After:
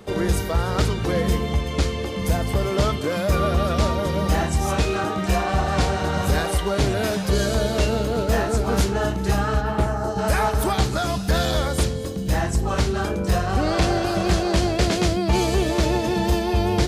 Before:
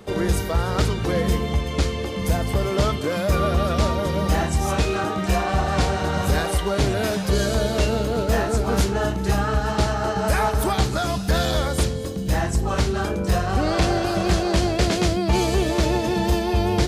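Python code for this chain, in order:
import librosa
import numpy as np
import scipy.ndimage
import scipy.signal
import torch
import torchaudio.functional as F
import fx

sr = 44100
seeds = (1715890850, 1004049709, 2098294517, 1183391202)

y = fx.peak_eq(x, sr, hz=fx.line((9.6, 8900.0), (10.17, 2000.0)), db=-14.5, octaves=1.5, at=(9.6, 10.17), fade=0.02)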